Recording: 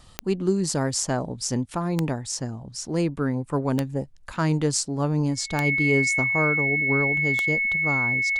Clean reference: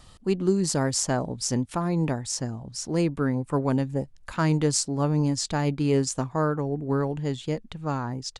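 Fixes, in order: de-click; notch 2200 Hz, Q 30

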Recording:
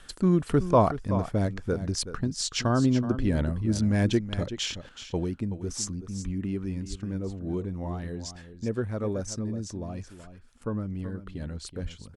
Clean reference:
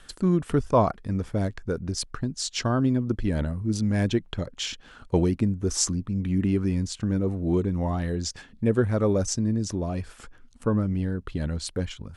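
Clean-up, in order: 6.24–6.36 HPF 140 Hz 24 dB/oct; 6.89–7.01 HPF 140 Hz 24 dB/oct; 11.82–11.94 HPF 140 Hz 24 dB/oct; inverse comb 0.376 s -12 dB; gain 0 dB, from 4.89 s +7.5 dB

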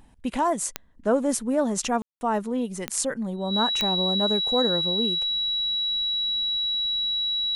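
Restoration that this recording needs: de-click; notch 3900 Hz, Q 30; room tone fill 2.02–2.21

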